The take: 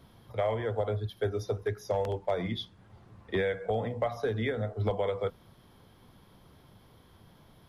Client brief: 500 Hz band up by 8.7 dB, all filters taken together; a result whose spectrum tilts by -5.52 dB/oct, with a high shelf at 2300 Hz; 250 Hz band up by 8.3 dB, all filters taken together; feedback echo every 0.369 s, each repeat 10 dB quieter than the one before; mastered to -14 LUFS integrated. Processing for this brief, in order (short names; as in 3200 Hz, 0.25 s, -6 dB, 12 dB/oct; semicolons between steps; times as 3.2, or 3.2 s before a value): bell 250 Hz +8.5 dB; bell 500 Hz +7.5 dB; high shelf 2300 Hz +6.5 dB; feedback echo 0.369 s, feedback 32%, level -10 dB; gain +10.5 dB